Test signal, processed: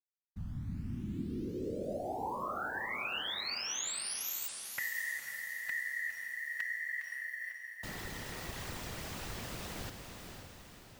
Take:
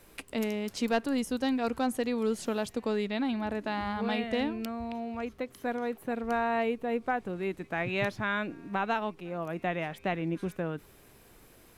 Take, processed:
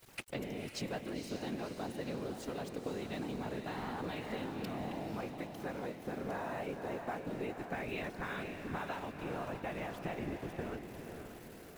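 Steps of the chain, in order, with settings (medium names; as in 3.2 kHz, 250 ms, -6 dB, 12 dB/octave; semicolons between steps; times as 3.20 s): peaking EQ 11 kHz -4.5 dB; compression 8:1, threshold -39 dBFS; small samples zeroed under -53 dBFS; whisper effect; echo that smears into a reverb 517 ms, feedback 52%, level -6 dB; trim +1 dB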